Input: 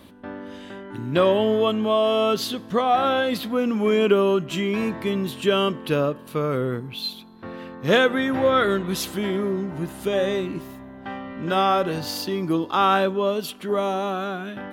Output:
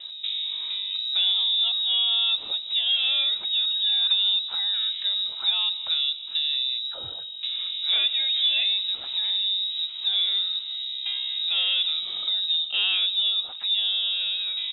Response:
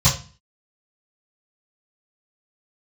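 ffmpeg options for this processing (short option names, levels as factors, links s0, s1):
-filter_complex "[0:a]highpass=f=62:w=0.5412,highpass=f=62:w=1.3066,tiltshelf=f=770:g=9,acompressor=threshold=0.0316:ratio=2,asplit=2[s0][s1];[s1]aecho=0:1:162:0.1[s2];[s0][s2]amix=inputs=2:normalize=0,aeval=exprs='0.178*(cos(1*acos(clip(val(0)/0.178,-1,1)))-cos(1*PI/2))+0.00501*(cos(5*acos(clip(val(0)/0.178,-1,1)))-cos(5*PI/2))':c=same,acrossover=split=300[s3][s4];[s3]acompressor=threshold=0.02:ratio=4[s5];[s5][s4]amix=inputs=2:normalize=0,lowpass=f=3400:t=q:w=0.5098,lowpass=f=3400:t=q:w=0.6013,lowpass=f=3400:t=q:w=0.9,lowpass=f=3400:t=q:w=2.563,afreqshift=-4000,volume=1.41"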